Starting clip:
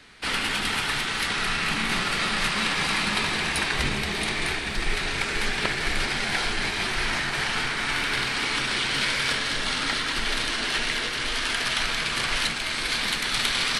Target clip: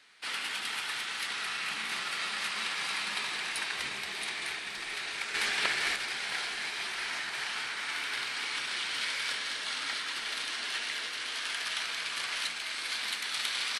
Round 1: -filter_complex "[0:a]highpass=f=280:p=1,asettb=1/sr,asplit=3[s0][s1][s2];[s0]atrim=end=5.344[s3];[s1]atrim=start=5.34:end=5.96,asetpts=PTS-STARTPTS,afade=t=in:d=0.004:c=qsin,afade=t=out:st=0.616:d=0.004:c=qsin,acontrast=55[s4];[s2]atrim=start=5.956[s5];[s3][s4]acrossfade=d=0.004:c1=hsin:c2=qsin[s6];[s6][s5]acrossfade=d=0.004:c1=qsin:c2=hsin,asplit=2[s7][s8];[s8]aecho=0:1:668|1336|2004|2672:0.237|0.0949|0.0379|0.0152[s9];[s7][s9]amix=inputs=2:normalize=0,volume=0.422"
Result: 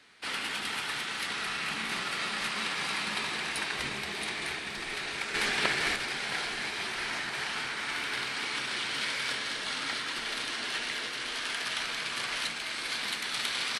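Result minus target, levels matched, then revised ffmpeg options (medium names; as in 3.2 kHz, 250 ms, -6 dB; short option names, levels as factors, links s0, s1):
250 Hz band +8.5 dB
-filter_complex "[0:a]highpass=f=1100:p=1,asettb=1/sr,asplit=3[s0][s1][s2];[s0]atrim=end=5.344[s3];[s1]atrim=start=5.34:end=5.96,asetpts=PTS-STARTPTS,afade=t=in:d=0.004:c=qsin,afade=t=out:st=0.616:d=0.004:c=qsin,acontrast=55[s4];[s2]atrim=start=5.956[s5];[s3][s4]acrossfade=d=0.004:c1=hsin:c2=qsin[s6];[s6][s5]acrossfade=d=0.004:c1=qsin:c2=hsin,asplit=2[s7][s8];[s8]aecho=0:1:668|1336|2004|2672:0.237|0.0949|0.0379|0.0152[s9];[s7][s9]amix=inputs=2:normalize=0,volume=0.422"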